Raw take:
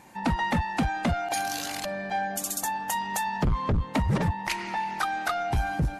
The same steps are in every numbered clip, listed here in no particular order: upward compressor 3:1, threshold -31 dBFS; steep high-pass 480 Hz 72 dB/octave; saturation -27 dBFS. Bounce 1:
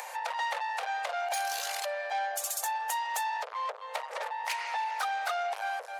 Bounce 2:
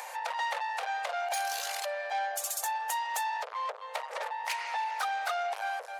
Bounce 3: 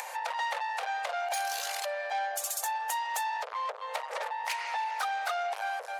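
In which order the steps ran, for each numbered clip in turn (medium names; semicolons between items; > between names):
saturation > upward compressor > steep high-pass; upward compressor > saturation > steep high-pass; saturation > steep high-pass > upward compressor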